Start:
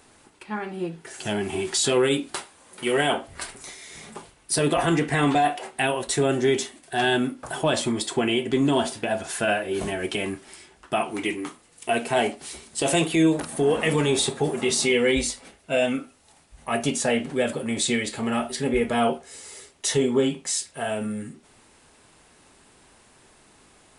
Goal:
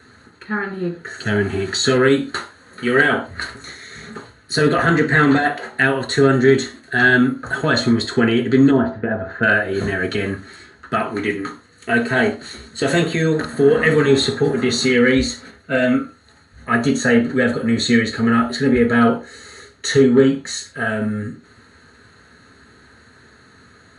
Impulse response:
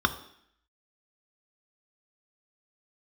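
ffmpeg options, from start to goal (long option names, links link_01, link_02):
-filter_complex "[0:a]asettb=1/sr,asplit=3[link_01][link_02][link_03];[link_01]atrim=end=8.714[link_04];[link_02]atrim=start=8.71:end=9.43,asetpts=PTS-STARTPTS,afade=type=in:duration=0.004:curve=qsin,afade=type=out:start_time=0.716:duration=0.004:curve=qsin,lowpass=1200[link_05];[link_03]atrim=start=9.426[link_06];[link_04][link_05]acrossfade=duration=0.004:curve1=hsin:curve2=qsin[link_07];[link_07][link_06]acrossfade=duration=0.004:curve1=qsin:curve2=hsin,volume=13dB,asoftclip=hard,volume=-13dB[link_08];[1:a]atrim=start_sample=2205,afade=type=out:start_time=0.19:duration=0.01,atrim=end_sample=8820,asetrate=52920,aresample=44100[link_09];[link_08][link_09]afir=irnorm=-1:irlink=0,volume=-3.5dB"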